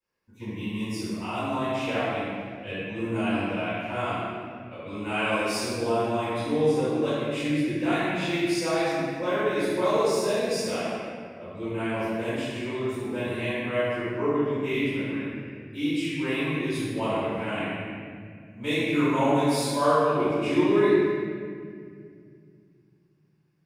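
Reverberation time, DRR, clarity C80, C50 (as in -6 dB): 2.2 s, -19.0 dB, -2.5 dB, -5.0 dB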